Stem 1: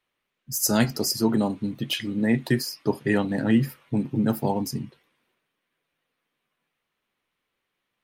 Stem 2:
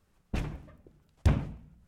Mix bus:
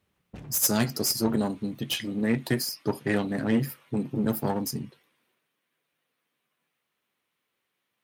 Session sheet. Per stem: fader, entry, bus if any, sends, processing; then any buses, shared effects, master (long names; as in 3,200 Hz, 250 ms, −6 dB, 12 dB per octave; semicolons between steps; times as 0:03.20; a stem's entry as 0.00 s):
−1.0 dB, 0.00 s, no send, one-sided soft clipper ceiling −24.5 dBFS; high-shelf EQ 7,100 Hz +6.5 dB
−5.0 dB, 0.00 s, no send, soft clipping −28 dBFS, distortion −5 dB; tilt shelving filter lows +3 dB; automatic ducking −12 dB, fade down 1.90 s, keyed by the first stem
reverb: not used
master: high-pass filter 90 Hz